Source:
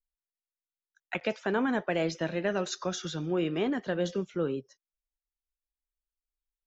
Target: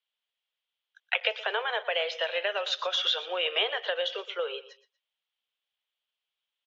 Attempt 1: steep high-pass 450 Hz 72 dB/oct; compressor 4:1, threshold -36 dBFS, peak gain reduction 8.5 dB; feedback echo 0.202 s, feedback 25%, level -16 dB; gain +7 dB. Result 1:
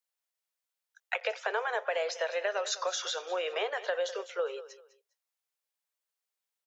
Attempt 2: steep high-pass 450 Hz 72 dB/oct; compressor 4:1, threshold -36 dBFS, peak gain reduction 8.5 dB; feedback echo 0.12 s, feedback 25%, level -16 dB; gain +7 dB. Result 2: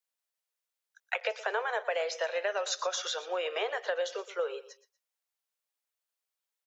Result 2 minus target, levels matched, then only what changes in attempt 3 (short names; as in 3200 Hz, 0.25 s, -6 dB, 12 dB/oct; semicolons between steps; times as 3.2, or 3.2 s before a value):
4000 Hz band -6.0 dB
add after compressor: synth low-pass 3200 Hz, resonance Q 5.4